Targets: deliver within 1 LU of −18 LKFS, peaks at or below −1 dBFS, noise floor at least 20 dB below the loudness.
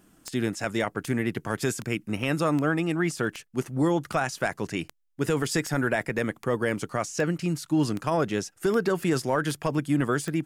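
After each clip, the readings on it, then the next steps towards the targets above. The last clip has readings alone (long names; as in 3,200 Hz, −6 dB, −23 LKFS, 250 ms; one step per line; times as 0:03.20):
number of clicks 14; integrated loudness −27.5 LKFS; sample peak −13.0 dBFS; target loudness −18.0 LKFS
→ click removal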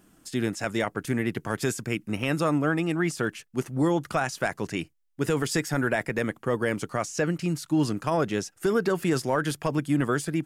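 number of clicks 0; integrated loudness −27.5 LKFS; sample peak −13.0 dBFS; target loudness −18.0 LKFS
→ level +9.5 dB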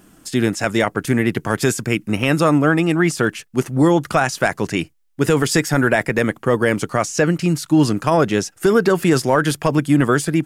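integrated loudness −18.0 LKFS; sample peak −3.5 dBFS; background noise floor −52 dBFS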